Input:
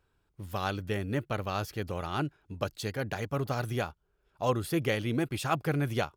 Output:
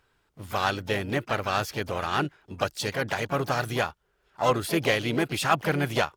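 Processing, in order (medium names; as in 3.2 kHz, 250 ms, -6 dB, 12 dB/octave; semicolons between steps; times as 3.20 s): overdrive pedal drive 7 dB, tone 8 kHz, clips at -14 dBFS; harmony voices +3 st -18 dB, +4 st -10 dB, +12 st -18 dB; trim +5 dB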